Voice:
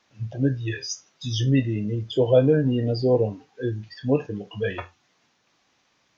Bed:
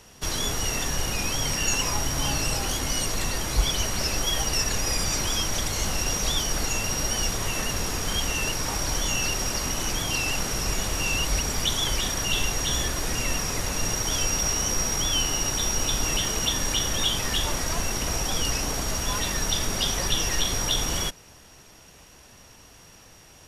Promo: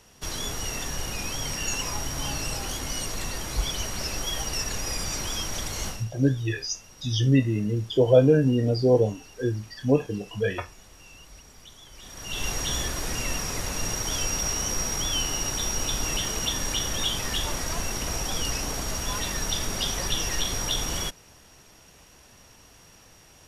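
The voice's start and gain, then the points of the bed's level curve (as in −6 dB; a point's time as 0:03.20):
5.80 s, +0.5 dB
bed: 0:05.88 −4.5 dB
0:06.10 −23.5 dB
0:11.90 −23.5 dB
0:12.48 −2.5 dB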